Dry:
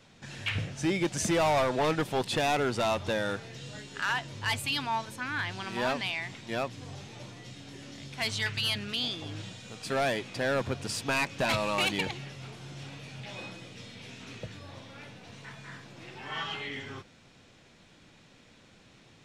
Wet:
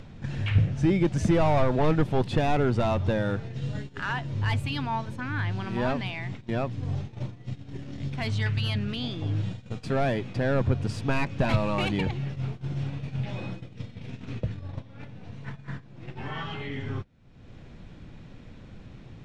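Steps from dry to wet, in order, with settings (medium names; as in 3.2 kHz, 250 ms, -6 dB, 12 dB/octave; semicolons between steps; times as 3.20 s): gate -43 dBFS, range -20 dB; upward compressor, threshold -33 dBFS; RIAA curve playback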